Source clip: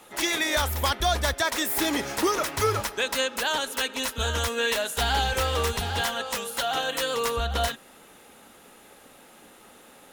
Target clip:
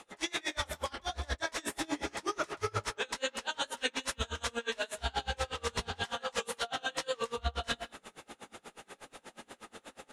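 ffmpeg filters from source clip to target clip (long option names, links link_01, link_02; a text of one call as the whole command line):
ffmpeg -i in.wav -filter_complex "[0:a]lowpass=frequency=9300:width=0.5412,lowpass=frequency=9300:width=1.3066,bandreject=frequency=55.58:width_type=h:width=4,bandreject=frequency=111.16:width_type=h:width=4,bandreject=frequency=166.74:width_type=h:width=4,bandreject=frequency=222.32:width_type=h:width=4,bandreject=frequency=277.9:width_type=h:width=4,bandreject=frequency=333.48:width_type=h:width=4,bandreject=frequency=389.06:width_type=h:width=4,bandreject=frequency=444.64:width_type=h:width=4,bandreject=frequency=500.22:width_type=h:width=4,bandreject=frequency=555.8:width_type=h:width=4,bandreject=frequency=611.38:width_type=h:width=4,areverse,acompressor=threshold=-33dB:ratio=10,areverse,flanger=delay=17:depth=5.1:speed=2.4,asplit=2[link_01][link_02];[link_02]adelay=31,volume=-11dB[link_03];[link_01][link_03]amix=inputs=2:normalize=0,asplit=2[link_04][link_05];[link_05]adelay=160,highpass=300,lowpass=3400,asoftclip=type=hard:threshold=-36dB,volume=-7dB[link_06];[link_04][link_06]amix=inputs=2:normalize=0,aeval=exprs='val(0)*pow(10,-30*(0.5-0.5*cos(2*PI*8.3*n/s))/20)':channel_layout=same,volume=9dB" out.wav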